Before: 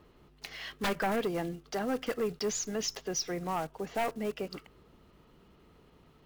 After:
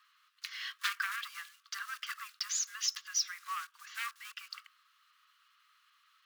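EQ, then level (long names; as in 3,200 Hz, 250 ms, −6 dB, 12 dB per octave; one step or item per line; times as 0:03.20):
Chebyshev high-pass with heavy ripple 1,100 Hz, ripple 3 dB
+3.0 dB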